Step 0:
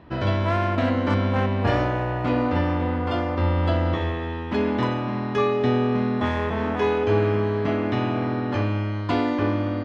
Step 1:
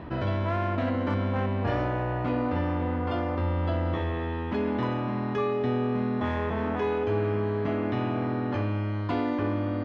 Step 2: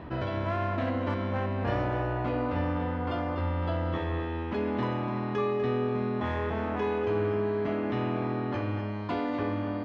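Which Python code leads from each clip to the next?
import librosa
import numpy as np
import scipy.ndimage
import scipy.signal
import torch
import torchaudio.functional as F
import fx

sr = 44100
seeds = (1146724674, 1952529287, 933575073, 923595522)

y1 = fx.high_shelf(x, sr, hz=3800.0, db=-9.0)
y1 = fx.env_flatten(y1, sr, amount_pct=50)
y1 = y1 * librosa.db_to_amplitude(-7.0)
y2 = fx.hum_notches(y1, sr, base_hz=50, count=7)
y2 = y2 + 10.0 ** (-10.5 / 20.0) * np.pad(y2, (int(246 * sr / 1000.0), 0))[:len(y2)]
y2 = y2 * librosa.db_to_amplitude(-1.5)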